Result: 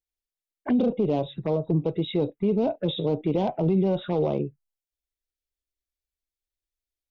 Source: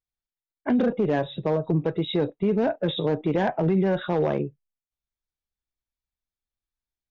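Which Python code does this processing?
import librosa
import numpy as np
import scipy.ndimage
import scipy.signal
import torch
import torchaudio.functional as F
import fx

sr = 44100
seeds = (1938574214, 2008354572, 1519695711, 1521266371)

y = fx.env_phaser(x, sr, low_hz=170.0, high_hz=1700.0, full_db=-21.0)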